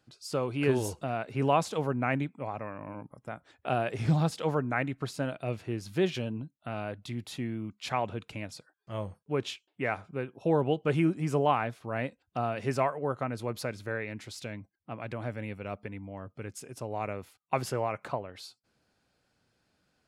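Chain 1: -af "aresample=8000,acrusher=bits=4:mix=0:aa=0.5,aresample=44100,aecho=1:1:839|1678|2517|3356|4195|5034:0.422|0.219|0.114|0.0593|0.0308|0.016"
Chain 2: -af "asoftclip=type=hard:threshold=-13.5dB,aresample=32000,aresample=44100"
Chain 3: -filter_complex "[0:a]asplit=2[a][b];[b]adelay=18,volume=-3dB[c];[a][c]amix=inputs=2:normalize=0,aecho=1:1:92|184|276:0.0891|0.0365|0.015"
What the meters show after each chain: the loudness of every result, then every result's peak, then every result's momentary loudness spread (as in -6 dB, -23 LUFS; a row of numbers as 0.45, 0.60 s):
-32.0, -32.5, -30.5 LUFS; -10.5, -13.5, -10.5 dBFS; 14, 15, 15 LU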